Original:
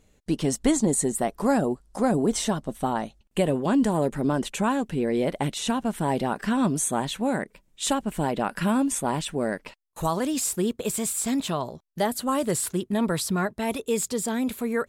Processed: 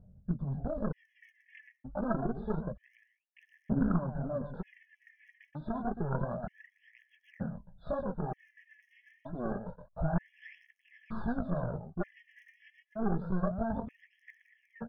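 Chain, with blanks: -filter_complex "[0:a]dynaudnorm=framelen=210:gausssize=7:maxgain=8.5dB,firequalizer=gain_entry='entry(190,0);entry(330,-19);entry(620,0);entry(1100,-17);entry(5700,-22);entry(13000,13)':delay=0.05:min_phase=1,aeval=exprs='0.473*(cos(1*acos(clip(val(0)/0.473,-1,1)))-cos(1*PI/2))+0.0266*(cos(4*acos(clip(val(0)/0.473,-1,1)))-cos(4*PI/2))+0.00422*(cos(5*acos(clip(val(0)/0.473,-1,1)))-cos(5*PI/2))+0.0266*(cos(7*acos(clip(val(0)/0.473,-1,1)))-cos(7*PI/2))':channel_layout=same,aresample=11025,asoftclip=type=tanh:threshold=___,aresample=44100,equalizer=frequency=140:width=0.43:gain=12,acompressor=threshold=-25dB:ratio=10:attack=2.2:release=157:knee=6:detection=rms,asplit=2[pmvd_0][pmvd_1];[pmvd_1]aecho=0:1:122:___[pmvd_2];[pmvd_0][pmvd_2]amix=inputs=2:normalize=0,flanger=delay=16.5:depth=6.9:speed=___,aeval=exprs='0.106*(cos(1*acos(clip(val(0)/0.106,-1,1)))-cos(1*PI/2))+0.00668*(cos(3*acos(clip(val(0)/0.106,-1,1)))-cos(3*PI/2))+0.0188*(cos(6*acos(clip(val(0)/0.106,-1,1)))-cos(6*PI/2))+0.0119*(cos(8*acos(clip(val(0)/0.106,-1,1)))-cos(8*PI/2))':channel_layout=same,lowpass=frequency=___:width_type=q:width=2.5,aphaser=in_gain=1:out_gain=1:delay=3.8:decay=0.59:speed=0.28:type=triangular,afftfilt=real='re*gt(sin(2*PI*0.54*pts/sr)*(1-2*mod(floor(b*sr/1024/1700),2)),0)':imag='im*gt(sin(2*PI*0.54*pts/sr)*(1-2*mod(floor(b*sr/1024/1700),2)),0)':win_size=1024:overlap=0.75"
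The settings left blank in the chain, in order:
-18dB, 0.447, 3, 1500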